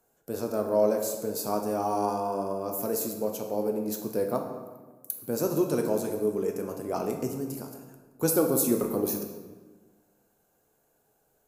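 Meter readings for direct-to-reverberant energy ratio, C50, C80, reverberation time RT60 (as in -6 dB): 3.0 dB, 6.0 dB, 8.0 dB, 1.4 s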